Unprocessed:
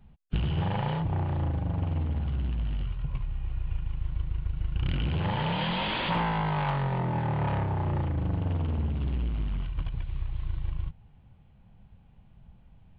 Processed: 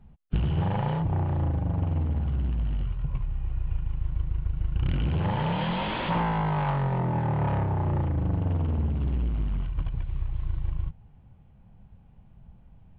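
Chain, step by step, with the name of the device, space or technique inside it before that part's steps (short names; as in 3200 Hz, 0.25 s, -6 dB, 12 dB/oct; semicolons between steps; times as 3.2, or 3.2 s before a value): through cloth (high shelf 2500 Hz -11 dB); gain +2.5 dB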